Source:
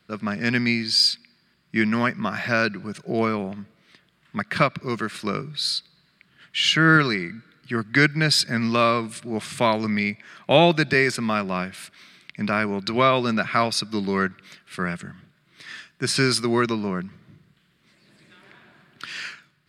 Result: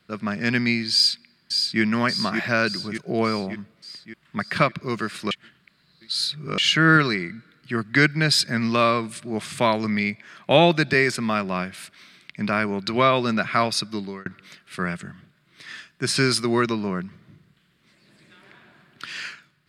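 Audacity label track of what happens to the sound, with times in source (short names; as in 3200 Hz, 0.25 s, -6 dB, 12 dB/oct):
0.920000	1.810000	echo throw 0.58 s, feedback 60%, level -5 dB
5.310000	6.580000	reverse
13.840000	14.260000	fade out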